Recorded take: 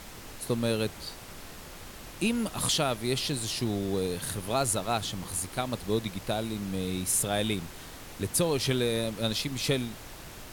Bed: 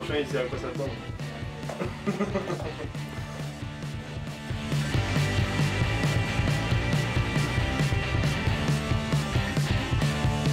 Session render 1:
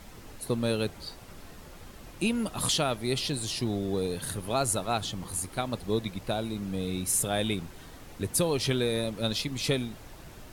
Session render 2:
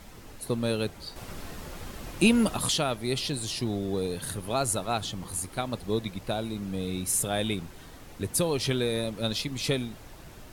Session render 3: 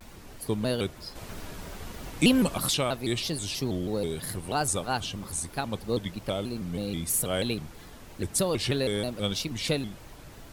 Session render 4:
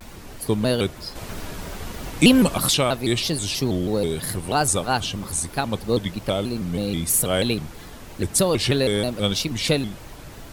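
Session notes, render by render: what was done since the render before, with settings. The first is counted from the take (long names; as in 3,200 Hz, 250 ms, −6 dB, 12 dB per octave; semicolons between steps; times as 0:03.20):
broadband denoise 7 dB, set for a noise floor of −45 dBFS
0:01.16–0:02.57: clip gain +7 dB
floating-point word with a short mantissa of 6 bits; pitch modulation by a square or saw wave square 3.1 Hz, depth 160 cents
level +7 dB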